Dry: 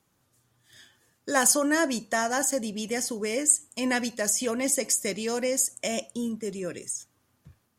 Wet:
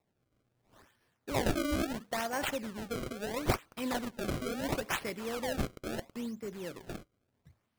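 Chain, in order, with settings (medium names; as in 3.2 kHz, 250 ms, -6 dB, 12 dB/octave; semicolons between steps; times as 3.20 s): decimation with a swept rate 28×, swing 160% 0.74 Hz; trim -8 dB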